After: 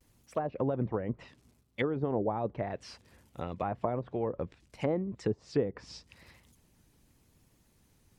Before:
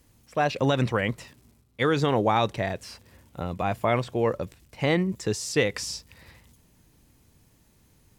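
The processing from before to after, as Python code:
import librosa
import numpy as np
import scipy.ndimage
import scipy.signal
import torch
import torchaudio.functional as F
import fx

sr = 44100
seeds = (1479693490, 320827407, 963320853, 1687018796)

y = fx.hpss(x, sr, part='harmonic', gain_db=-7)
y = fx.env_lowpass_down(y, sr, base_hz=600.0, full_db=-24.0)
y = fx.vibrato(y, sr, rate_hz=0.84, depth_cents=57.0)
y = y * librosa.db_to_amplitude(-2.5)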